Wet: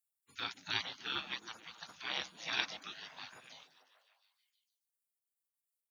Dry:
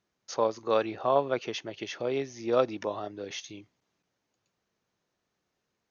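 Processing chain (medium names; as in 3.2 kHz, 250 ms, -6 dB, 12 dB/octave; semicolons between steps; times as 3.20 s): spectral gate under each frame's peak -30 dB weak; high-pass 82 Hz 24 dB/octave; on a send: repeats whose band climbs or falls 147 ms, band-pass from 200 Hz, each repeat 0.7 oct, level -7 dB; on the sum: trim +11 dB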